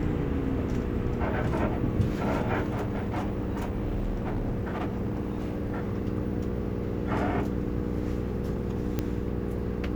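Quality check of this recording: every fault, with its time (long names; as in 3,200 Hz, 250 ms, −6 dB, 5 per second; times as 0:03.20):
mains hum 60 Hz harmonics 8 −33 dBFS
0:02.70–0:05.92: clipping −25.5 dBFS
0:08.99: click −15 dBFS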